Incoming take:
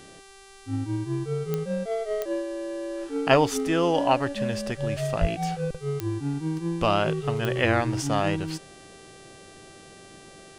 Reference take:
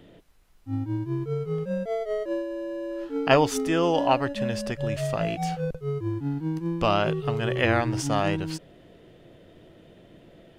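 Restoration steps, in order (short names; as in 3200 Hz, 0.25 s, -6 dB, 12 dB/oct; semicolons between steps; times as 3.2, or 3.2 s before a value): de-click; de-hum 391.1 Hz, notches 28; 5.2–5.32 HPF 140 Hz 24 dB/oct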